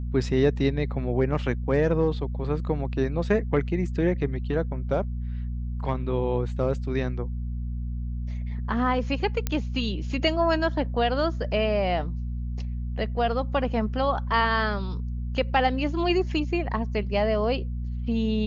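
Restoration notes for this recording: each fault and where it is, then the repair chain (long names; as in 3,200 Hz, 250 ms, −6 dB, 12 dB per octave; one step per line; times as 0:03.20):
mains hum 60 Hz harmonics 4 −30 dBFS
0:09.47: click −11 dBFS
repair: click removal
hum removal 60 Hz, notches 4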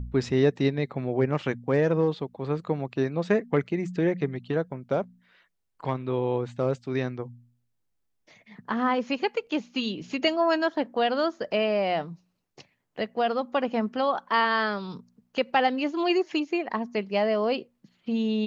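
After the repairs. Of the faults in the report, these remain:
none of them is left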